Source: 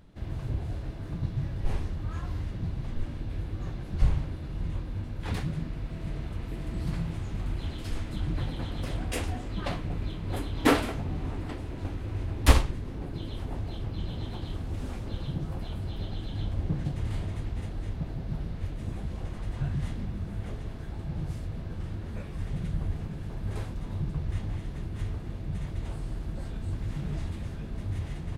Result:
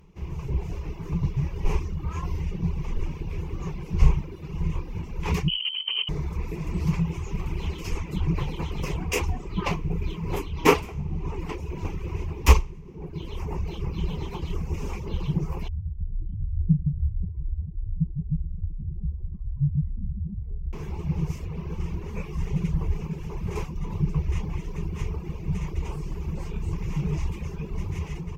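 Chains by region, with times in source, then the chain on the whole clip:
5.48–6.09 s: bass shelf 66 Hz +8 dB + compressor with a negative ratio -35 dBFS + frequency inversion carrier 3.1 kHz
15.68–20.73 s: spectral contrast enhancement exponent 2.6 + feedback echo behind a band-pass 60 ms, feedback 75%, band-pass 830 Hz, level -3.5 dB
whole clip: reverb removal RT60 1.1 s; rippled EQ curve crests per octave 0.77, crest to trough 13 dB; level rider gain up to 5.5 dB

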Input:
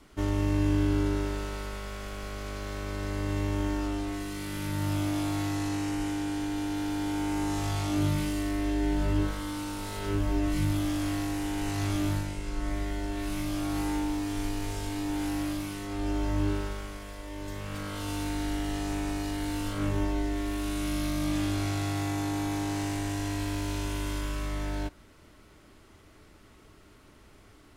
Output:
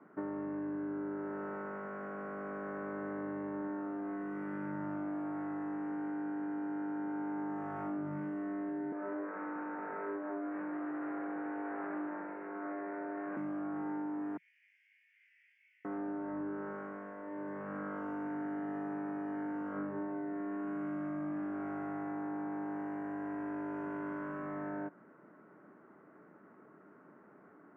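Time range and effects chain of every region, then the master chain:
8.92–13.37 s: high-pass 310 Hz 24 dB/octave + careless resampling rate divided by 8×, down none, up filtered + loudspeaker Doppler distortion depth 0.22 ms
14.37–15.85 s: steep high-pass 2.1 kHz 72 dB/octave + distance through air 170 m
whole clip: elliptic band-pass 170–1600 Hz, stop band 40 dB; compression, threshold -36 dBFS

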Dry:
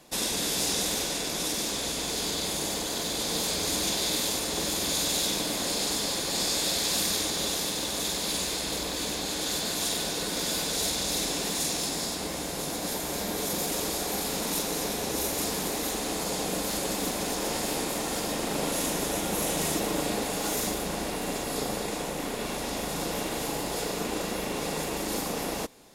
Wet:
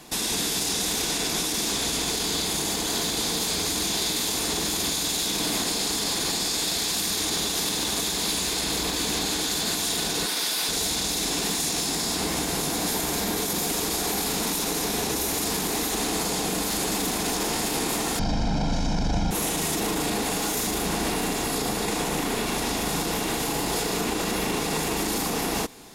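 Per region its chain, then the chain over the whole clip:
10.26–10.69 s: high-pass 870 Hz 6 dB/octave + peaking EQ 7.1 kHz -6 dB 0.29 oct
18.19–19.31 s: resonant low-pass 5.4 kHz, resonance Q 3.4 + tilt EQ -4 dB/octave + comb 1.3 ms, depth 76%
whole clip: peaking EQ 560 Hz -11 dB 0.24 oct; peak limiter -26 dBFS; trim +9 dB

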